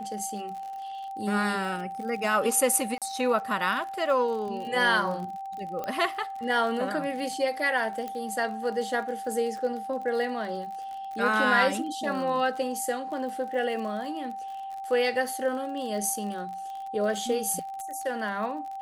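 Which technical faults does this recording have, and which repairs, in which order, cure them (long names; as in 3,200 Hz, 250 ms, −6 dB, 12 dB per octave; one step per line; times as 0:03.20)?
surface crackle 46 per second −36 dBFS
whistle 780 Hz −34 dBFS
0:02.98–0:03.02: drop-out 37 ms
0:05.84: click −20 dBFS
0:08.08: click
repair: click removal
notch filter 780 Hz, Q 30
repair the gap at 0:02.98, 37 ms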